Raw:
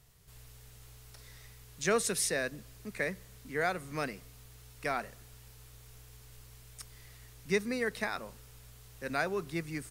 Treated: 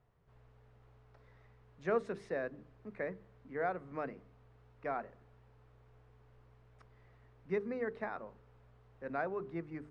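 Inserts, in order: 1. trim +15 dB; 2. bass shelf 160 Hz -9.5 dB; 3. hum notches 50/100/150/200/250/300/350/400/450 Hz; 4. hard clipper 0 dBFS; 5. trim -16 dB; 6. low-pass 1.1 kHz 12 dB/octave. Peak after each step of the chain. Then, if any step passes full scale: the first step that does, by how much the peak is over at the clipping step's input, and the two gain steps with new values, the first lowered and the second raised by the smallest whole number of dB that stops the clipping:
-1.0 dBFS, -2.0 dBFS, -2.5 dBFS, -2.5 dBFS, -18.5 dBFS, -21.0 dBFS; nothing clips

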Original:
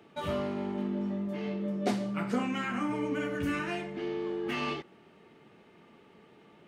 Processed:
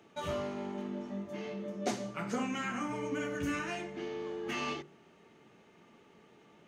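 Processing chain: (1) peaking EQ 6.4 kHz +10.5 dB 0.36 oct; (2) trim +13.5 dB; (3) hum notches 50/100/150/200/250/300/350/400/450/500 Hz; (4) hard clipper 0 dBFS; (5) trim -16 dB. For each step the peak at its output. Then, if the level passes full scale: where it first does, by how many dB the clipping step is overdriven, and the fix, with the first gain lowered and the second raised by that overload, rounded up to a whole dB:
-15.0 dBFS, -1.5 dBFS, -3.5 dBFS, -3.5 dBFS, -19.5 dBFS; nothing clips

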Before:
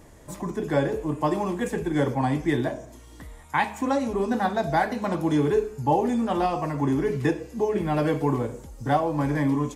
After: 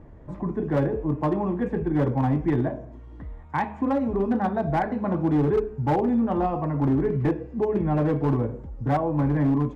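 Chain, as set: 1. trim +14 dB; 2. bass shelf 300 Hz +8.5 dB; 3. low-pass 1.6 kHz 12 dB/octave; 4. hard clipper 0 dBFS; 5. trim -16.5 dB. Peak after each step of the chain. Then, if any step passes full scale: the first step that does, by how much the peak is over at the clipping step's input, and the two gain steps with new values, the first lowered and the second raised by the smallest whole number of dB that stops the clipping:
+4.5 dBFS, +7.5 dBFS, +7.5 dBFS, 0.0 dBFS, -16.5 dBFS; step 1, 7.5 dB; step 1 +6 dB, step 5 -8.5 dB

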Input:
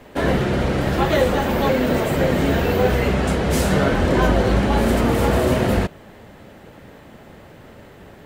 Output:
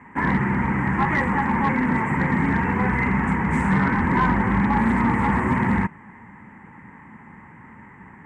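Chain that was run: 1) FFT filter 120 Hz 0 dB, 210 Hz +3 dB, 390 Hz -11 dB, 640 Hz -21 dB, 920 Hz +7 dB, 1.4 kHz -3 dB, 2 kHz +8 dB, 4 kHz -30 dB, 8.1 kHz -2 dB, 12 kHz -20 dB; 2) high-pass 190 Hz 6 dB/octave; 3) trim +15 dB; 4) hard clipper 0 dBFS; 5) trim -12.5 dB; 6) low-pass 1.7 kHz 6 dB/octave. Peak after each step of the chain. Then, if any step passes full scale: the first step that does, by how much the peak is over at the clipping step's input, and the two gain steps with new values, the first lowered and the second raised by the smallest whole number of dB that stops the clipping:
-6.0 dBFS, -8.5 dBFS, +6.5 dBFS, 0.0 dBFS, -12.5 dBFS, -12.5 dBFS; step 3, 6.5 dB; step 3 +8 dB, step 5 -5.5 dB

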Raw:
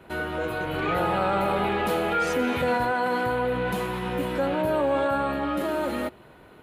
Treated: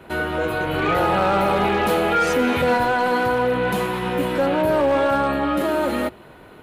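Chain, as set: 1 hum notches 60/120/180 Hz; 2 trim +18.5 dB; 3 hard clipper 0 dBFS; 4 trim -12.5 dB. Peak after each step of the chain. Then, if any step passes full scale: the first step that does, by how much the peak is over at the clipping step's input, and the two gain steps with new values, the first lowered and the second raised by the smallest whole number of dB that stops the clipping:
-14.0 dBFS, +4.5 dBFS, 0.0 dBFS, -12.5 dBFS; step 2, 4.5 dB; step 2 +13.5 dB, step 4 -7.5 dB

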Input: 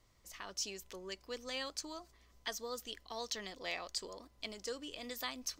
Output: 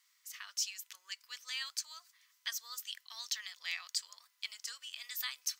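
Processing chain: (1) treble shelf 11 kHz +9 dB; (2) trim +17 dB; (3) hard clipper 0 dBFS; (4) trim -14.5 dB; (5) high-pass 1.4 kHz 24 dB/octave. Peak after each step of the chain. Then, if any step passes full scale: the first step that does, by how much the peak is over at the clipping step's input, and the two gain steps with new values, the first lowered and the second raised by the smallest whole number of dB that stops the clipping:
-22.5 dBFS, -5.5 dBFS, -5.5 dBFS, -20.0 dBFS, -20.0 dBFS; nothing clips

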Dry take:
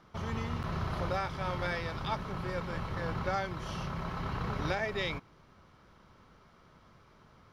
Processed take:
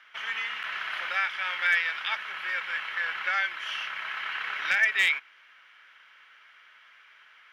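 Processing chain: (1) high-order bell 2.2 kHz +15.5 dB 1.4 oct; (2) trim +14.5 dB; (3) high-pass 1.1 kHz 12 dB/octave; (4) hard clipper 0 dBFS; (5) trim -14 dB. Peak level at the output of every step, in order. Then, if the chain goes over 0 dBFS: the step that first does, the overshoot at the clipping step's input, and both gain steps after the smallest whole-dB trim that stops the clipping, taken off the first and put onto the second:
-9.0 dBFS, +5.5 dBFS, +4.5 dBFS, 0.0 dBFS, -14.0 dBFS; step 2, 4.5 dB; step 2 +9.5 dB, step 5 -9 dB

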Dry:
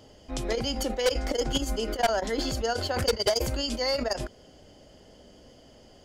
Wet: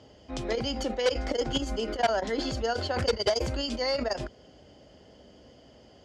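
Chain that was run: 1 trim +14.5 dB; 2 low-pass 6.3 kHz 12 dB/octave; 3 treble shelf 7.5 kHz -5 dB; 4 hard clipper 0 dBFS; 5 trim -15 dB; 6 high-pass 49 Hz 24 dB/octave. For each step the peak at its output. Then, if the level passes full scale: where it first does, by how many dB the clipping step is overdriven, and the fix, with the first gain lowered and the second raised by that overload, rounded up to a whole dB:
-4.0 dBFS, -3.0 dBFS, -3.5 dBFS, -3.5 dBFS, -18.5 dBFS, -15.0 dBFS; nothing clips

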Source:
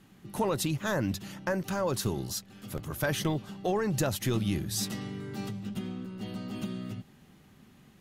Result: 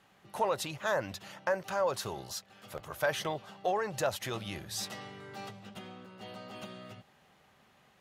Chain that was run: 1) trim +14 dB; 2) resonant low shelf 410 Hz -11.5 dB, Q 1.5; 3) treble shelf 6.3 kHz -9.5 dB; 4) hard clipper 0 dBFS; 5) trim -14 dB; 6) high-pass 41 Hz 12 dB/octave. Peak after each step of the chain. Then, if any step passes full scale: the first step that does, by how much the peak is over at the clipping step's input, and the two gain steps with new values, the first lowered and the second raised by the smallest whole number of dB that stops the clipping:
-2.5 dBFS, -2.5 dBFS, -3.0 dBFS, -3.0 dBFS, -17.0 dBFS, -16.5 dBFS; nothing clips

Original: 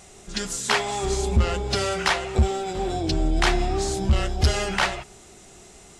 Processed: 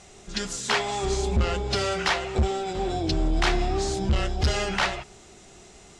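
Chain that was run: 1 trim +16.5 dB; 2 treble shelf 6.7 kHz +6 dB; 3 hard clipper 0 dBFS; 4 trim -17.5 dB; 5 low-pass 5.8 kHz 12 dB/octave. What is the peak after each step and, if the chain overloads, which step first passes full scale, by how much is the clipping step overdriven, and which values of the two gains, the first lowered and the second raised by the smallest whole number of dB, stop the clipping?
+7.0 dBFS, +8.0 dBFS, 0.0 dBFS, -17.5 dBFS, -16.5 dBFS; step 1, 8.0 dB; step 1 +8.5 dB, step 4 -9.5 dB

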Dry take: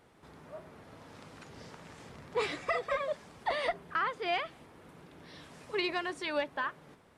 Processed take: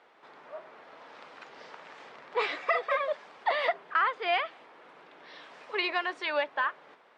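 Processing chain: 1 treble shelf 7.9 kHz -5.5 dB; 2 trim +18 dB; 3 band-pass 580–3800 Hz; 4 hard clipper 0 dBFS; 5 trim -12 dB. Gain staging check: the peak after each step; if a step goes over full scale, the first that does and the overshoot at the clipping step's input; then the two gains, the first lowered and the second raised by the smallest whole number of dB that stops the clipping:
-21.0 dBFS, -3.0 dBFS, -3.5 dBFS, -3.5 dBFS, -15.5 dBFS; nothing clips

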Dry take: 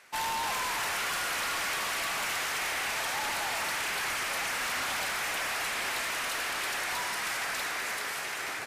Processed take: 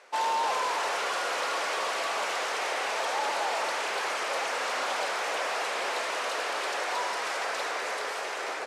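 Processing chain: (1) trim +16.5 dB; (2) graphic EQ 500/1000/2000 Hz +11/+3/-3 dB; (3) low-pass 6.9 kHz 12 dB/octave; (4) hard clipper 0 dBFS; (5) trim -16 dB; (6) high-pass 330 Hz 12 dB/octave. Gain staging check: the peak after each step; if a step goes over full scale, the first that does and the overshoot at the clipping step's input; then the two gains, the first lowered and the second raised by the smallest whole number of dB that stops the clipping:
-8.0 dBFS, -3.0 dBFS, -4.0 dBFS, -4.0 dBFS, -20.0 dBFS, -19.5 dBFS; nothing clips

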